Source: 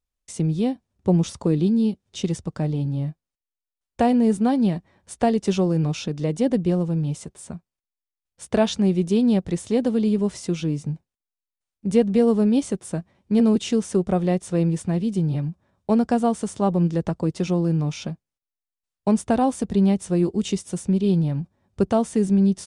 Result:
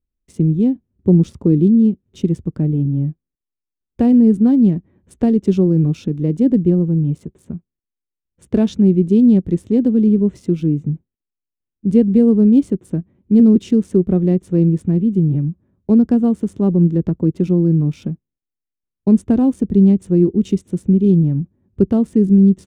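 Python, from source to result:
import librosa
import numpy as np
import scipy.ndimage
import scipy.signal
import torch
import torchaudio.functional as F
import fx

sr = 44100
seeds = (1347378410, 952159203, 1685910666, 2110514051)

y = fx.wiener(x, sr, points=9)
y = fx.low_shelf_res(y, sr, hz=490.0, db=12.0, q=1.5)
y = y * 10.0 ** (-6.0 / 20.0)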